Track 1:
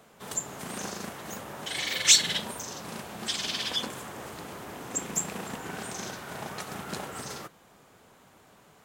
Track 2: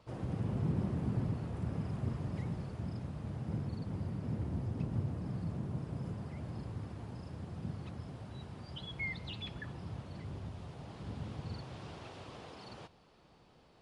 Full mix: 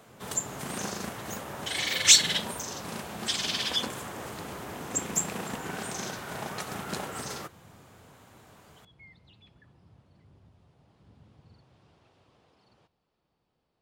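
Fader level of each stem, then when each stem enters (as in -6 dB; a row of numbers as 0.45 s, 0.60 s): +1.5 dB, -15.0 dB; 0.00 s, 0.00 s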